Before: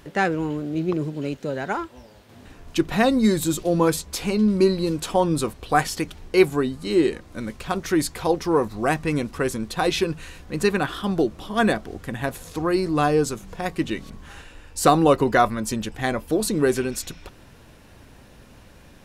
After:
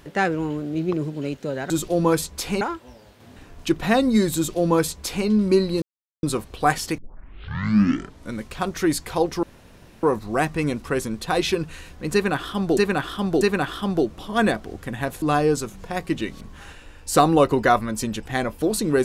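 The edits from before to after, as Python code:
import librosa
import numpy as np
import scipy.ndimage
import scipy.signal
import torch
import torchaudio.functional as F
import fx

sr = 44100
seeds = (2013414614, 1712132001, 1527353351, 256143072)

y = fx.edit(x, sr, fx.duplicate(start_s=3.45, length_s=0.91, to_s=1.7),
    fx.silence(start_s=4.91, length_s=0.41),
    fx.tape_start(start_s=6.07, length_s=1.35),
    fx.insert_room_tone(at_s=8.52, length_s=0.6),
    fx.repeat(start_s=10.62, length_s=0.64, count=3),
    fx.cut(start_s=12.43, length_s=0.48), tone=tone)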